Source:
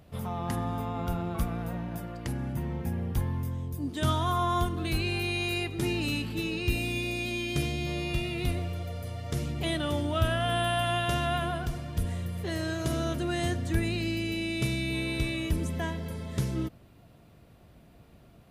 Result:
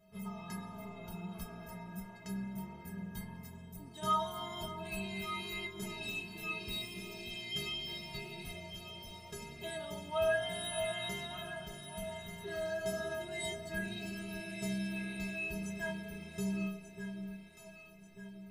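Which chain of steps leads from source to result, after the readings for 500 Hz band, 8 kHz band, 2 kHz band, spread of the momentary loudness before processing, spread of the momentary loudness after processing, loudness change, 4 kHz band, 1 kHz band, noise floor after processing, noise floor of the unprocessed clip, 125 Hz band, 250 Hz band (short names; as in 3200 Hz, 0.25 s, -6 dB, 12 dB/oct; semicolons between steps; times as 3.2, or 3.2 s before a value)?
-5.5 dB, -5.0 dB, -6.5 dB, 7 LU, 11 LU, -9.0 dB, -6.5 dB, -8.5 dB, -54 dBFS, -56 dBFS, -16.0 dB, -9.5 dB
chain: flange 1.4 Hz, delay 1.4 ms, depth 8 ms, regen +73%; metallic resonator 190 Hz, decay 0.71 s, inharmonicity 0.03; echo with dull and thin repeats by turns 0.594 s, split 890 Hz, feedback 66%, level -7 dB; gain +13.5 dB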